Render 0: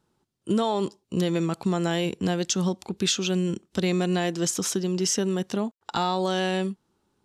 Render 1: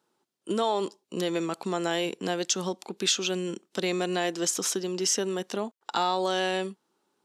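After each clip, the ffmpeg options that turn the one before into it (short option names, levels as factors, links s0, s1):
-af "highpass=330"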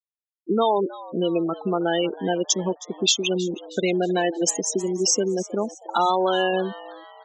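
-filter_complex "[0:a]afftfilt=real='re*gte(hypot(re,im),0.0794)':imag='im*gte(hypot(re,im),0.0794)':win_size=1024:overlap=0.75,asplit=5[s0][s1][s2][s3][s4];[s1]adelay=317,afreqshift=130,volume=0.126[s5];[s2]adelay=634,afreqshift=260,volume=0.0569[s6];[s3]adelay=951,afreqshift=390,volume=0.0254[s7];[s4]adelay=1268,afreqshift=520,volume=0.0115[s8];[s0][s5][s6][s7][s8]amix=inputs=5:normalize=0,volume=2.11"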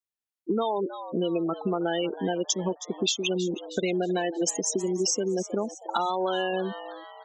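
-af "acompressor=threshold=0.0708:ratio=6"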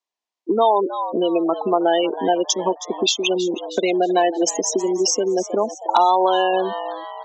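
-af "asoftclip=type=hard:threshold=0.168,highpass=f=250:w=0.5412,highpass=f=250:w=1.3066,equalizer=f=690:t=q:w=4:g=6,equalizer=f=1000:t=q:w=4:g=9,equalizer=f=1400:t=q:w=4:g=-7,lowpass=f=6900:w=0.5412,lowpass=f=6900:w=1.3066,volume=2.37"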